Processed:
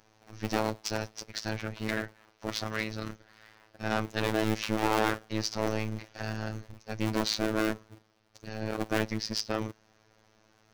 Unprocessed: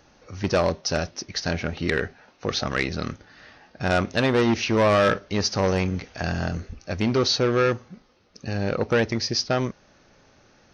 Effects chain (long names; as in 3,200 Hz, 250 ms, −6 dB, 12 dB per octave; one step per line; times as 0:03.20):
sub-harmonics by changed cycles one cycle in 2, inverted
phases set to zero 109 Hz
level −6 dB